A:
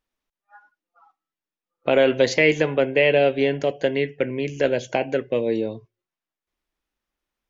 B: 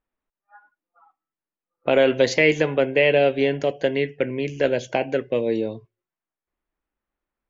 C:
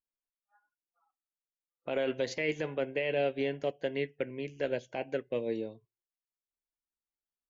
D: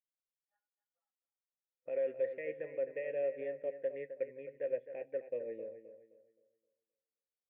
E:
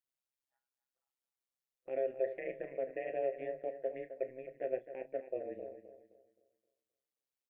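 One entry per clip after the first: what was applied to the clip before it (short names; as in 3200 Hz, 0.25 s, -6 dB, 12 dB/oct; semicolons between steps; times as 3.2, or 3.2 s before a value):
low-pass opened by the level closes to 1900 Hz, open at -18 dBFS
limiter -11.5 dBFS, peak gain reduction 6 dB; upward expander 1.5:1, over -41 dBFS; gain -9 dB
vocal tract filter e; on a send: analogue delay 0.261 s, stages 4096, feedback 32%, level -11 dB
AM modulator 130 Hz, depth 80%; doubler 34 ms -13 dB; gain +3 dB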